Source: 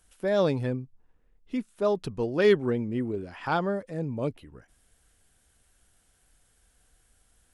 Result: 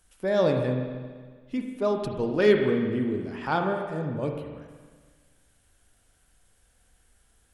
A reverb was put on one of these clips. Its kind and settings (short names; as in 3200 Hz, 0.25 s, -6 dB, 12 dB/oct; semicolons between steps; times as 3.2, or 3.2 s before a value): spring tank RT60 1.6 s, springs 38/47 ms, chirp 40 ms, DRR 3 dB